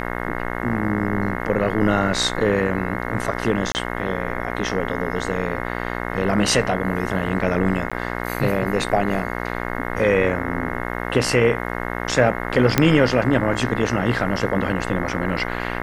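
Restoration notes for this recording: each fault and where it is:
buzz 60 Hz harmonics 36 -27 dBFS
3.72–3.75 s: dropout 29 ms
7.90–7.92 s: dropout 16 ms
12.78 s: pop -1 dBFS

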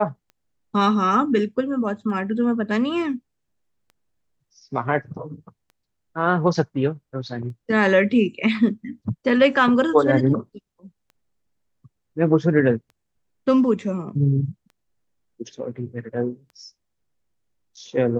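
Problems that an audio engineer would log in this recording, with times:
tick 33 1/3 rpm -33 dBFS

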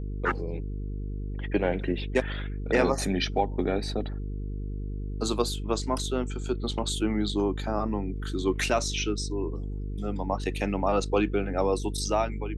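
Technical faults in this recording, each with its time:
buzz 50 Hz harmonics 9 -33 dBFS

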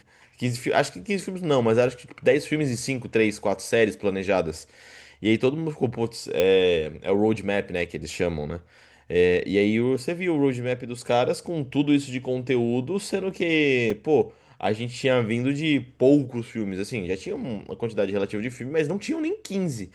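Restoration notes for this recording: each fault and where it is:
6.40 s: pop -8 dBFS
13.90 s: dropout 3.8 ms

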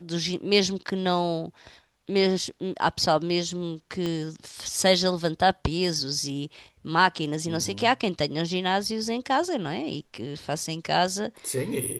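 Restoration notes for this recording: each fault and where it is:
4.06 s: pop -17 dBFS

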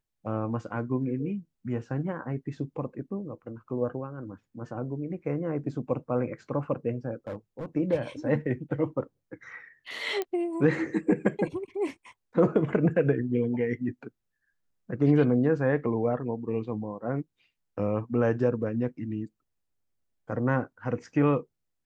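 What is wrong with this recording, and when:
7.27–7.66 s: clipped -30.5 dBFS
10.22 s: pop -17 dBFS

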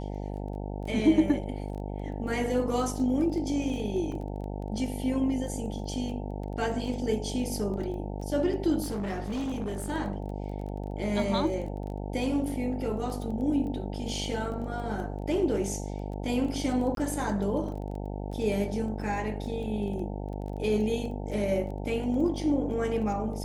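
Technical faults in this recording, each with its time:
buzz 50 Hz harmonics 18 -35 dBFS
crackle 12 per s -36 dBFS
4.12 s: dropout 2.7 ms
8.82–9.91 s: clipped -28.5 dBFS
16.95–16.97 s: dropout 22 ms

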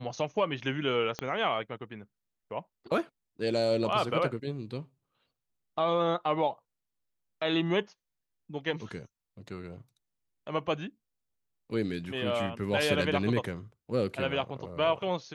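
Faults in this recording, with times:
1.19 s: pop -18 dBFS

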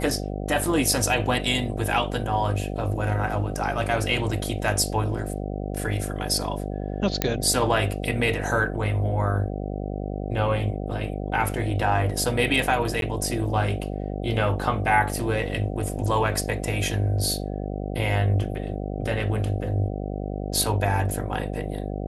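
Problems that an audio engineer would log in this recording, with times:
buzz 50 Hz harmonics 15 -30 dBFS
7.22 s: pop -5 dBFS
13.01–13.02 s: dropout 12 ms

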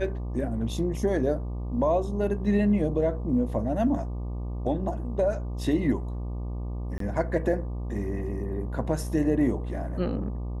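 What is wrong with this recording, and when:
buzz 60 Hz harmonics 20 -32 dBFS
6.98–7.00 s: dropout 23 ms

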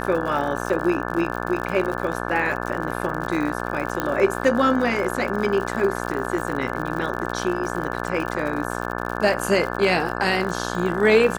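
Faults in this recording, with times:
buzz 60 Hz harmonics 29 -28 dBFS
crackle 80 per s -28 dBFS
4.00 s: pop -9 dBFS

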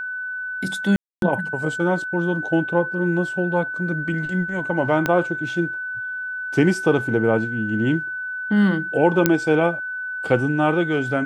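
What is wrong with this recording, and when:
whine 1.5 kHz -26 dBFS
0.96–1.22 s: dropout 262 ms
5.06 s: pop -7 dBFS
9.26 s: pop -1 dBFS

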